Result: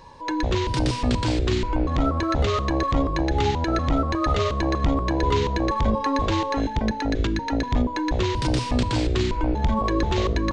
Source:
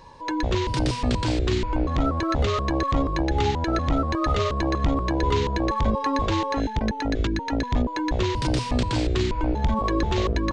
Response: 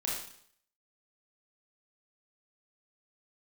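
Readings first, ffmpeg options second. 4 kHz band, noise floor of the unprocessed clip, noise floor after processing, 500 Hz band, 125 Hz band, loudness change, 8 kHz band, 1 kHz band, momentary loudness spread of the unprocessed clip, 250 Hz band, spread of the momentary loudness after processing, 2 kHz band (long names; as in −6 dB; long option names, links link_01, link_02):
+1.0 dB, −32 dBFS, −31 dBFS, +1.0 dB, +1.0 dB, +1.0 dB, +1.0 dB, +1.0 dB, 2 LU, +1.0 dB, 2 LU, +1.0 dB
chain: -filter_complex "[0:a]asplit=2[link_01][link_02];[1:a]atrim=start_sample=2205,atrim=end_sample=6174[link_03];[link_02][link_03]afir=irnorm=-1:irlink=0,volume=-18.5dB[link_04];[link_01][link_04]amix=inputs=2:normalize=0"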